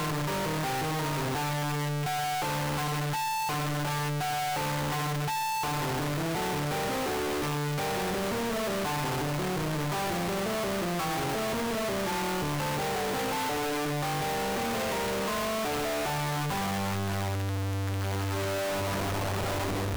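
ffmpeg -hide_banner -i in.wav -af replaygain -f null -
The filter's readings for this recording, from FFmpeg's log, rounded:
track_gain = +14.7 dB
track_peak = 0.022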